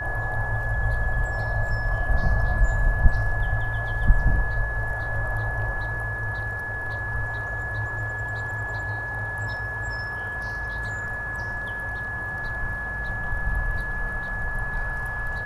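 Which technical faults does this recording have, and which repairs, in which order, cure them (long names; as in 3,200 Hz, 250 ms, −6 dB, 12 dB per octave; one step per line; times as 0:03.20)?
whistle 1,700 Hz −29 dBFS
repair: notch filter 1,700 Hz, Q 30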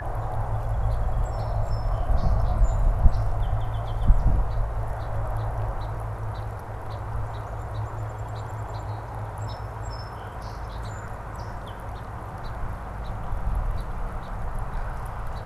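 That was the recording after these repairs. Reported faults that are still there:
none of them is left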